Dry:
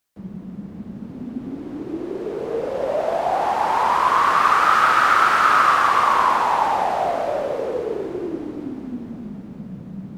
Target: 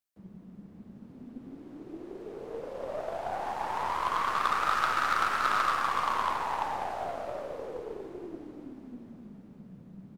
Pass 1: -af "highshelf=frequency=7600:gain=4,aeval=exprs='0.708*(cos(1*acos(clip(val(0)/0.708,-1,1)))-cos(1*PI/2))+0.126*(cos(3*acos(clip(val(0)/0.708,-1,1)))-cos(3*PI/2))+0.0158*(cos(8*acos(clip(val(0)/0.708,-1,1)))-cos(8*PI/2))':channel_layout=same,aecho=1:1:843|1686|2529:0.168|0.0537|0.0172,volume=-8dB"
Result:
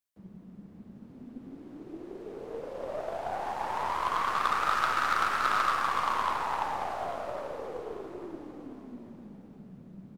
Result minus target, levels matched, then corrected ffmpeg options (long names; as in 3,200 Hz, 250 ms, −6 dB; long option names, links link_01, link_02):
echo-to-direct +11 dB
-af "highshelf=frequency=7600:gain=4,aeval=exprs='0.708*(cos(1*acos(clip(val(0)/0.708,-1,1)))-cos(1*PI/2))+0.126*(cos(3*acos(clip(val(0)/0.708,-1,1)))-cos(3*PI/2))+0.0158*(cos(8*acos(clip(val(0)/0.708,-1,1)))-cos(8*PI/2))':channel_layout=same,aecho=1:1:843|1686:0.0473|0.0151,volume=-8dB"